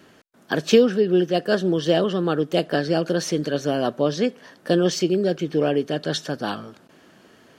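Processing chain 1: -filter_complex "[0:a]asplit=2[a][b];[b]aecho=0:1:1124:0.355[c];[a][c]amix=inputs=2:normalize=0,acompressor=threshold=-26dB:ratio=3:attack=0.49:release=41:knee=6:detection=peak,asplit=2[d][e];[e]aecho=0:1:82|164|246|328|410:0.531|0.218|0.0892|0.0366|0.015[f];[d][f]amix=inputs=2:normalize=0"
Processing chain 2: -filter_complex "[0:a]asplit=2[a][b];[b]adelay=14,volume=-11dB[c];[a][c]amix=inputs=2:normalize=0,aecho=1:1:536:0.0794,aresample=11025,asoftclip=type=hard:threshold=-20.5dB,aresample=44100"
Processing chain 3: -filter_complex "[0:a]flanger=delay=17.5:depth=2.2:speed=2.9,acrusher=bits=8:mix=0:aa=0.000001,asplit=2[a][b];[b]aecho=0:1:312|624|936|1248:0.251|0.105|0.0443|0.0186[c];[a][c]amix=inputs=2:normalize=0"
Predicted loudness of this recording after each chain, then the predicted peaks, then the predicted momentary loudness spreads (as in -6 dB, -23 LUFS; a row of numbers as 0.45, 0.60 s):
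-28.5, -26.0, -24.5 LUFS; -15.5, -16.5, -5.5 dBFS; 5, 5, 10 LU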